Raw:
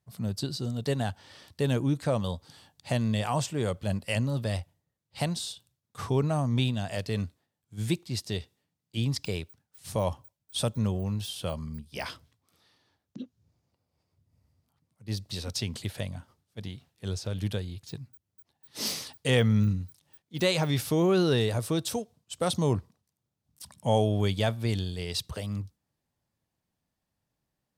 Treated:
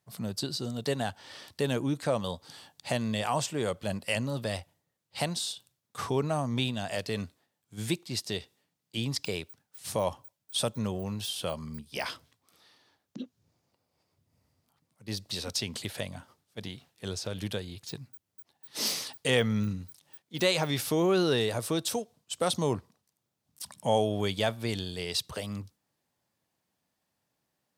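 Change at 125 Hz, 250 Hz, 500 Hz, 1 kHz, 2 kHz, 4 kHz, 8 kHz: −6.5, −2.5, 0.0, +1.0, +1.5, +1.5, +2.0 decibels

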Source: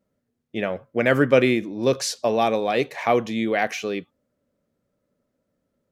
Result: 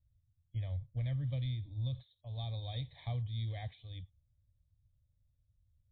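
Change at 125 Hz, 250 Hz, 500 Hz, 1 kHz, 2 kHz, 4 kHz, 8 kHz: −2.0 dB, −25.0 dB, −33.5 dB, −29.5 dB, −32.0 dB, −16.5 dB, below −40 dB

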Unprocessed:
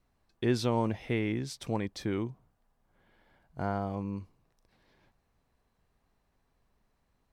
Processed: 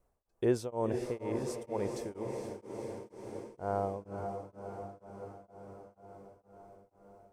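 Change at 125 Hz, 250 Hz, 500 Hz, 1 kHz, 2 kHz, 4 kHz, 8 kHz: −6.5, −5.0, +1.5, −1.5, −9.0, −10.5, −1.5 decibels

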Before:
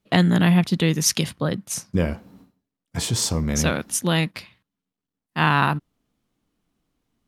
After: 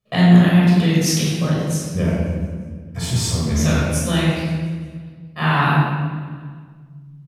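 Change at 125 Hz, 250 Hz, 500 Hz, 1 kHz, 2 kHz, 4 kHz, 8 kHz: +6.5, +5.5, +3.0, +2.0, +2.0, +1.0, −1.0 decibels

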